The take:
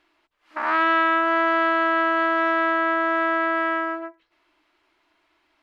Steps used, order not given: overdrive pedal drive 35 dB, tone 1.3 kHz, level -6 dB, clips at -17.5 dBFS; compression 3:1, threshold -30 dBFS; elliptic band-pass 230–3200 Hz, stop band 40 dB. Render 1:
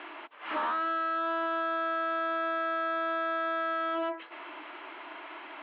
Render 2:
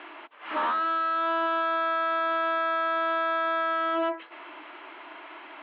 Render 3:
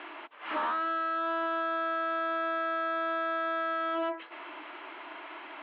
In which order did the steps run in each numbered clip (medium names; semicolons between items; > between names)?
overdrive pedal > elliptic band-pass > compression; compression > overdrive pedal > elliptic band-pass; overdrive pedal > compression > elliptic band-pass